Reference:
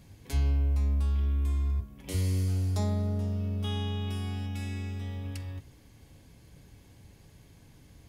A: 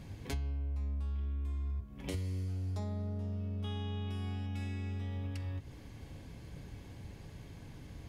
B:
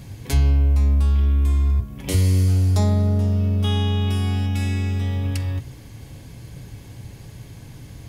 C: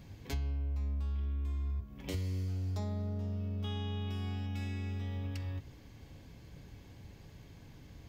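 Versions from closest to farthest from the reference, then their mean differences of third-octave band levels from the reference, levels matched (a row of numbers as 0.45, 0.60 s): B, C, A; 1.5, 4.0, 5.5 dB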